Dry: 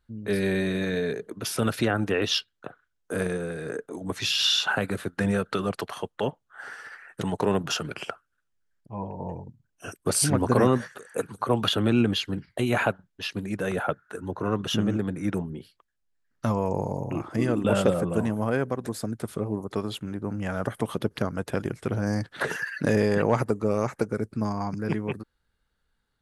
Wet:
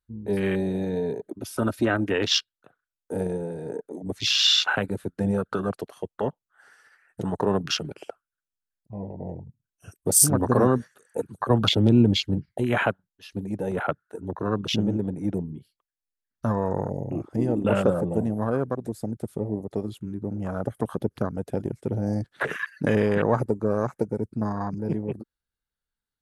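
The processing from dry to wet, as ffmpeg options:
-filter_complex "[0:a]asettb=1/sr,asplit=3[a][b][c];[a]atrim=end=1.234[d];[b]atrim=start=1.23:end=2.12,asetpts=PTS-STARTPTS,afade=t=in:d=0.004:c=qsin,afade=t=out:st=0.886:d=0.004:c=qsin,aecho=1:1:3.2:0.52,atrim=end_sample=39249[e];[c]atrim=start=2.116[f];[d][e]acrossfade=d=0.004:c1=hsin:c2=qsin[g];[g][f]acrossfade=d=0.004:c1=qsin:c2=hsin,asettb=1/sr,asplit=3[h][i][j];[h]atrim=end=11.504[k];[i]atrim=start=11.5:end=12.53,asetpts=PTS-STARTPTS,afade=t=in:d=0.004:c=qsin,afade=t=out:st=1.026:d=0.004:c=qsin,lowshelf=f=200:g=8.5[l];[j]atrim=start=12.526[m];[k][l]acrossfade=d=0.004:c1=hsin:c2=qsin[n];[n][m]acrossfade=d=0.004:c1=qsin:c2=hsin,aemphasis=mode=production:type=cd,afwtdn=0.0355,volume=1dB"

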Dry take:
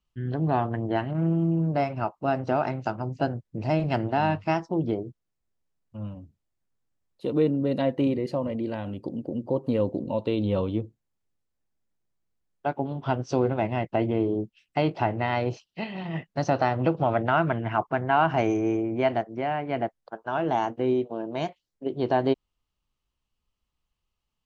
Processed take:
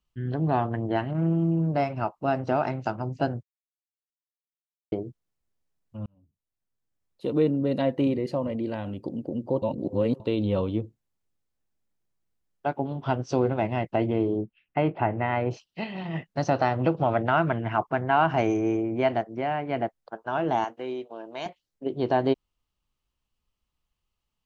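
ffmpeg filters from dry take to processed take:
-filter_complex "[0:a]asettb=1/sr,asplit=3[a][b][c];[a]atrim=end=14.414[d];[b]atrim=start=14.41:end=15.51,asetpts=PTS-STARTPTS,afade=t=in:d=0.004:c=qsin,afade=t=out:st=1.096:d=0.004:c=qsin,lowpass=f=2.6k:w=0.5412,lowpass=f=2.6k:w=1.3066[e];[c]atrim=start=15.506[f];[d][e]acrossfade=d=0.004:c1=hsin:c2=qsin[g];[g][f]acrossfade=d=0.004:c1=qsin:c2=hsin,asettb=1/sr,asplit=3[h][i][j];[h]atrim=end=20.644[k];[i]atrim=start=20.64:end=21.46,asetpts=PTS-STARTPTS,afade=t=in:d=0.004:c=qsin,afade=t=out:st=0.816:d=0.004:c=qsin,highpass=f=940:p=1[l];[j]atrim=start=21.456[m];[k][l]acrossfade=d=0.004:c1=hsin:c2=qsin[n];[n][m]acrossfade=d=0.004:c1=qsin:c2=hsin,asplit=6[o][p][q][r][s][t];[o]atrim=end=3.43,asetpts=PTS-STARTPTS,afade=t=out:st=3.426:d=0.004:c=hsin[u];[p]atrim=start=3.43:end=4.92,asetpts=PTS-STARTPTS,volume=0[v];[q]atrim=start=4.92:end=6.06,asetpts=PTS-STARTPTS,afade=t=in:d=0.004:c=hsin,afade=t=out:st=1.136:d=0.004:c=hsin[w];[r]atrim=start=6.06:end=9.622,asetpts=PTS-STARTPTS,afade=t=in:d=1.2[x];[s]atrim=start=9.618:end=10.202,asetpts=PTS-STARTPTS,areverse[y];[t]atrim=start=10.198[z];[u][v][w][x]concat=n=4:v=0:a=1[aa];[aa][y]acrossfade=d=0.004:c1=hsin:c2=hsin[ab];[ab][z]acrossfade=d=0.004:c1=hsin:c2=hsin"

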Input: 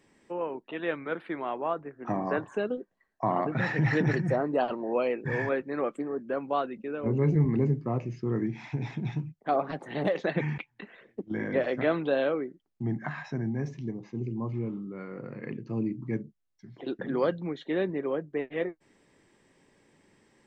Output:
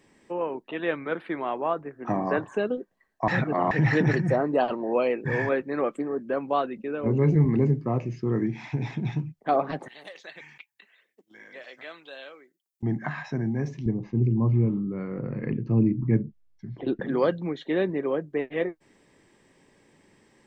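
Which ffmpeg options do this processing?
-filter_complex "[0:a]asettb=1/sr,asplit=3[a][b][c];[a]atrim=end=9.884[d];[b]atrim=start=9.88:end=12.83,asetpts=PTS-STARTPTS,afade=t=in:d=0.004:c=qsin,afade=t=out:st=2.946:d=0.004:c=qsin,aderivative[e];[c]atrim=start=12.826[f];[d][e]acrossfade=d=0.004:c1=hsin:c2=qsin[g];[g][f]acrossfade=d=0.004:c1=qsin:c2=hsin,asettb=1/sr,asplit=3[h][i][j];[h]atrim=end=13.864[k];[i]atrim=start=13.86:end=17,asetpts=PTS-STARTPTS,afade=t=in:d=0.004:c=qsin,afade=t=out:st=3.136:d=0.004:c=qsin,aemphasis=mode=reproduction:type=bsi[l];[j]atrim=start=16.996[m];[k][l]acrossfade=d=0.004:c1=hsin:c2=qsin[n];[n][m]acrossfade=d=0.004:c1=qsin:c2=hsin,asplit=3[o][p][q];[o]atrim=end=3.282[r];[p]atrim=start=3.278:end=3.712,asetpts=PTS-STARTPTS,areverse[s];[q]atrim=start=3.708[t];[r][s]acrossfade=d=0.004:c1=hsin:c2=hsin[u];[u][t]acrossfade=d=0.004:c1=hsin:c2=hsin,bandreject=f=1.4k:w=27,volume=3.5dB"

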